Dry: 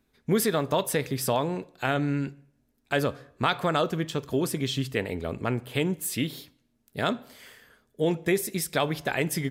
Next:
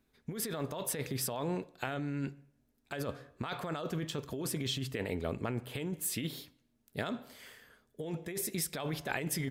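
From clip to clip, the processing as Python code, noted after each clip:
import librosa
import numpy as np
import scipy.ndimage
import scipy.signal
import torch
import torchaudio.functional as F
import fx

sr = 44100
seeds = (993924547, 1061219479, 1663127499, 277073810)

y = fx.over_compress(x, sr, threshold_db=-29.0, ratio=-1.0)
y = y * 10.0 ** (-6.5 / 20.0)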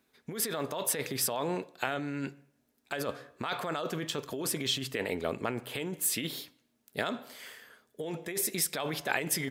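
y = fx.highpass(x, sr, hz=390.0, slope=6)
y = y * 10.0 ** (6.0 / 20.0)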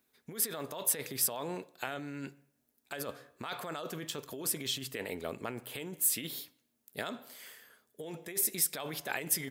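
y = fx.high_shelf(x, sr, hz=8600.0, db=12.0)
y = y * 10.0 ** (-6.0 / 20.0)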